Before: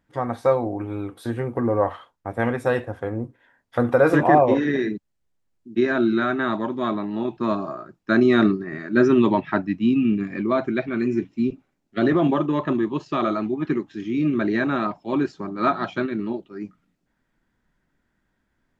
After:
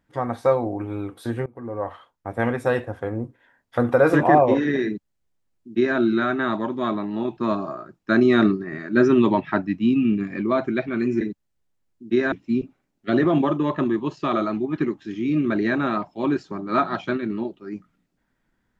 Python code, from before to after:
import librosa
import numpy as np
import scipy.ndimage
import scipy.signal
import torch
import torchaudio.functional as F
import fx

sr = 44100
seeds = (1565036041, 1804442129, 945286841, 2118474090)

y = fx.edit(x, sr, fx.fade_in_from(start_s=1.46, length_s=0.93, floor_db=-22.5),
    fx.duplicate(start_s=4.86, length_s=1.11, to_s=11.21), tone=tone)